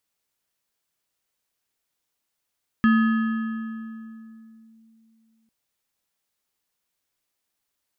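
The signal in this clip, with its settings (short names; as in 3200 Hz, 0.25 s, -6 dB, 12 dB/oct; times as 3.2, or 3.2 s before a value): FM tone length 2.65 s, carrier 224 Hz, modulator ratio 6.62, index 0.58, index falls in 1.94 s linear, decay 3.09 s, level -13 dB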